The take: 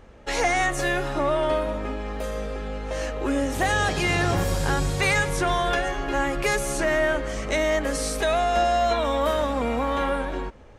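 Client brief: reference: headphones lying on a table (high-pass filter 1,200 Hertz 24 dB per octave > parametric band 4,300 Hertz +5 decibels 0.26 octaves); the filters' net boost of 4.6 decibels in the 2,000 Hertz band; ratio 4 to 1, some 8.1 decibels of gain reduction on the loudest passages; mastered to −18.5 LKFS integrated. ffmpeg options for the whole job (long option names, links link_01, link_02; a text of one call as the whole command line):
ffmpeg -i in.wav -af "equalizer=frequency=2000:width_type=o:gain=5.5,acompressor=threshold=-25dB:ratio=4,highpass=frequency=1200:width=0.5412,highpass=frequency=1200:width=1.3066,equalizer=frequency=4300:width_type=o:width=0.26:gain=5,volume=12.5dB" out.wav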